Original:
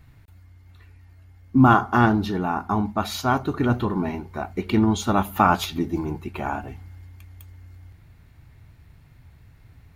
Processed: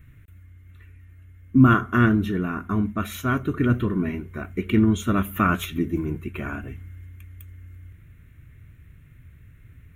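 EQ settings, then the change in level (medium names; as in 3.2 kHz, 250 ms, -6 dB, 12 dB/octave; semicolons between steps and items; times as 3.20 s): static phaser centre 2 kHz, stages 4; +2.0 dB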